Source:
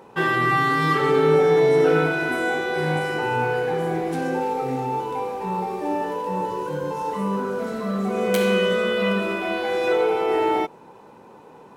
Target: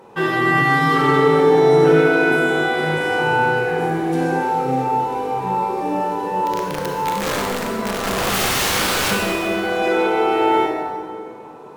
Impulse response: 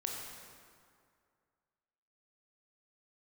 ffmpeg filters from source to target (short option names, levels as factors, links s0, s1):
-filter_complex "[0:a]asplit=3[s0][s1][s2];[s0]afade=t=out:st=6.46:d=0.02[s3];[s1]aeval=exprs='(mod(8.41*val(0)+1,2)-1)/8.41':c=same,afade=t=in:st=6.46:d=0.02,afade=t=out:st=9.1:d=0.02[s4];[s2]afade=t=in:st=9.1:d=0.02[s5];[s3][s4][s5]amix=inputs=3:normalize=0[s6];[1:a]atrim=start_sample=2205,asetrate=40572,aresample=44100[s7];[s6][s7]afir=irnorm=-1:irlink=0,volume=1.33"